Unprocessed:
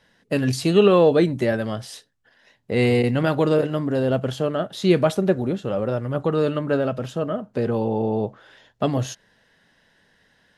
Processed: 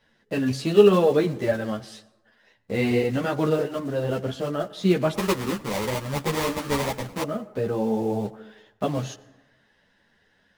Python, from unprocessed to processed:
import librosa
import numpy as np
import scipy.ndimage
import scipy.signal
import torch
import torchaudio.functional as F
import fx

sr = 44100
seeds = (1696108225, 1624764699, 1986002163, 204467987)

y = fx.block_float(x, sr, bits=5)
y = fx.high_shelf(y, sr, hz=7400.0, db=-9.0)
y = fx.sample_hold(y, sr, seeds[0], rate_hz=1500.0, jitter_pct=20, at=(5.14, 7.23))
y = fx.rev_plate(y, sr, seeds[1], rt60_s=1.1, hf_ratio=0.45, predelay_ms=85, drr_db=19.0)
y = fx.ensemble(y, sr)